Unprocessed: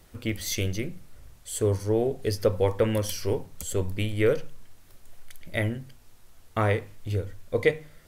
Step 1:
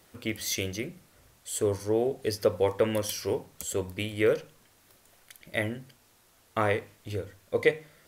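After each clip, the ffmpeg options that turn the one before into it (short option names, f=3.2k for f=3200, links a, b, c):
-af "highpass=f=250:p=1"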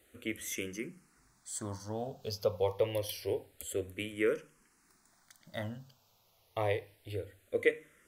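-filter_complex "[0:a]asplit=2[a][b];[b]afreqshift=-0.27[c];[a][c]amix=inputs=2:normalize=1,volume=-4dB"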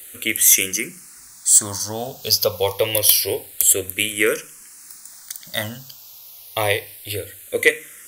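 -af "crystalizer=i=10:c=0,aeval=exprs='1.06*sin(PI/2*2*val(0)/1.06)':c=same,volume=-2dB"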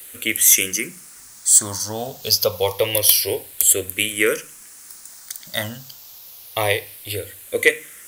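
-af "acrusher=bits=7:mix=0:aa=0.000001"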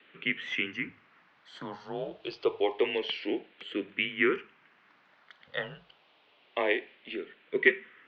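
-af "highpass=f=260:t=q:w=0.5412,highpass=f=260:t=q:w=1.307,lowpass=f=3.1k:t=q:w=0.5176,lowpass=f=3.1k:t=q:w=0.7071,lowpass=f=3.1k:t=q:w=1.932,afreqshift=-80,volume=-7dB"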